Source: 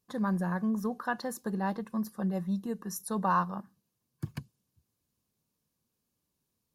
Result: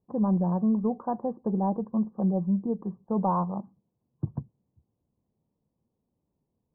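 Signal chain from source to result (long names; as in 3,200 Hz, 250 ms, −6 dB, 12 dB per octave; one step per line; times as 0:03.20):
in parallel at −9.5 dB: hard clipping −26 dBFS, distortion −14 dB
on the sum: Butterworth low-pass 920 Hz 36 dB per octave
level +3.5 dB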